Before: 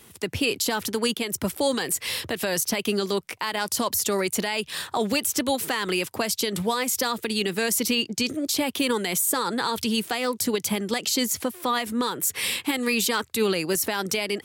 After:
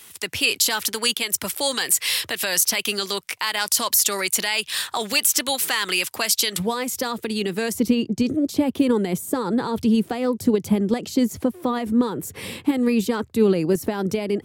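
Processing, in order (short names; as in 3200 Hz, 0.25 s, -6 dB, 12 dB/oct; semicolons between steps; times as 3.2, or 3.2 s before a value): tilt shelf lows -7.5 dB, about 810 Hz, from 6.58 s lows +3 dB, from 7.72 s lows +10 dB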